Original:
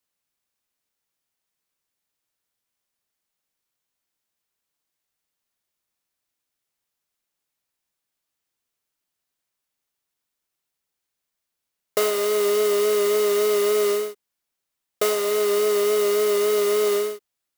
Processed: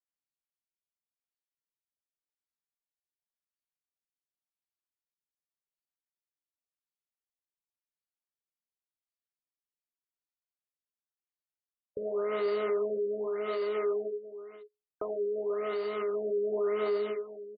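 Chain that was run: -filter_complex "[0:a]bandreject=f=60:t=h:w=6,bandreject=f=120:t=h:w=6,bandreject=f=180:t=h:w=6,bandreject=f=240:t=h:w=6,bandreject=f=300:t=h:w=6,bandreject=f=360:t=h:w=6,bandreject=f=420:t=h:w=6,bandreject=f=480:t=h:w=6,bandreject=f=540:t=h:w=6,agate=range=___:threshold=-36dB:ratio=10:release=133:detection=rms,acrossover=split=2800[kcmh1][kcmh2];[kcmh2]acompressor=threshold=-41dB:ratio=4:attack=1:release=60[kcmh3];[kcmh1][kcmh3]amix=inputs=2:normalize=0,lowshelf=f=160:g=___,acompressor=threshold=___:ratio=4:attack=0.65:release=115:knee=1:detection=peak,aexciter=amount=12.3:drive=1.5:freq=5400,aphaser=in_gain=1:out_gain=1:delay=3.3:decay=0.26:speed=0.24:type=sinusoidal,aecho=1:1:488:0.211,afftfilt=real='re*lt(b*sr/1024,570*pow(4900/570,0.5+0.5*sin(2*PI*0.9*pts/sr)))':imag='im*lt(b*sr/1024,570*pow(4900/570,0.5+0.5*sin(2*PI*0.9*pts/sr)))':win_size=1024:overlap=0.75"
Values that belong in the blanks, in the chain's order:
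-21dB, 2, -30dB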